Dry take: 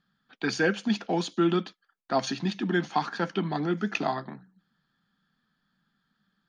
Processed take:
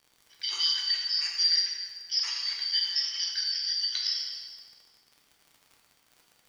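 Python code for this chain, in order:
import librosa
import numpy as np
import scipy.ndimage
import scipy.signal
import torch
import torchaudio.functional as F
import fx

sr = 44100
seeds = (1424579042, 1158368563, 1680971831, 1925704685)

y = fx.band_shuffle(x, sr, order='4321')
y = scipy.signal.sosfilt(scipy.signal.cheby1(2, 1.0, 1200.0, 'highpass', fs=sr, output='sos'), y)
y = fx.dmg_crackle(y, sr, seeds[0], per_s=78.0, level_db=-40.0)
y = fx.rev_plate(y, sr, seeds[1], rt60_s=1.7, hf_ratio=0.8, predelay_ms=0, drr_db=-1.5)
y = F.gain(torch.from_numpy(y), -4.0).numpy()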